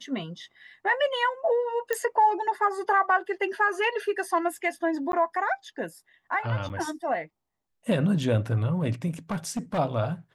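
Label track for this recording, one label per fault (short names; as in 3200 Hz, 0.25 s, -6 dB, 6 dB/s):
1.930000	1.930000	pop -13 dBFS
5.120000	5.130000	gap
6.690000	6.700000	gap 8.1 ms
9.310000	9.790000	clipped -24.5 dBFS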